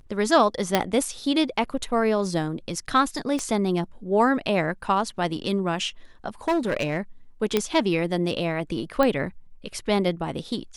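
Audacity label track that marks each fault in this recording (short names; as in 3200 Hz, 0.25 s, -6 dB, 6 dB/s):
0.750000	0.750000	pop -5 dBFS
3.390000	3.390000	pop -16 dBFS
6.480000	6.970000	clipped -18.5 dBFS
7.570000	7.570000	pop -7 dBFS
9.030000	9.030000	pop -10 dBFS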